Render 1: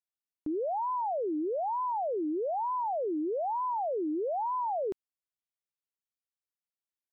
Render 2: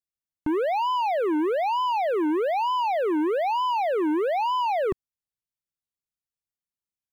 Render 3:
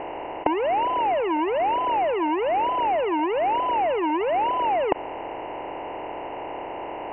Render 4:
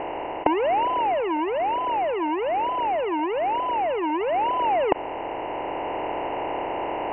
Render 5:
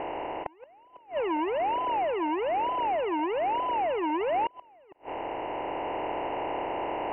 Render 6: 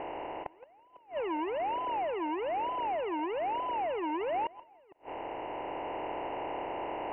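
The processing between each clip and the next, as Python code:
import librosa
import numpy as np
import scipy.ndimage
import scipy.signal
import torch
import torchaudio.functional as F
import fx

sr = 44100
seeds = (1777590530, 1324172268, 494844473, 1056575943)

y1 = fx.bass_treble(x, sr, bass_db=13, treble_db=4)
y1 = fx.leveller(y1, sr, passes=3)
y2 = fx.bin_compress(y1, sr, power=0.2)
y2 = scipy.signal.sosfilt(scipy.signal.cheby1(6, 6, 2900.0, 'lowpass', fs=sr, output='sos'), y2)
y3 = fx.rider(y2, sr, range_db=5, speed_s=2.0)
y4 = fx.gate_flip(y3, sr, shuts_db=-17.0, range_db=-31)
y4 = y4 * 10.0 ** (-3.5 / 20.0)
y5 = fx.echo_feedback(y4, sr, ms=166, feedback_pct=27, wet_db=-23)
y5 = y5 * 10.0 ** (-5.0 / 20.0)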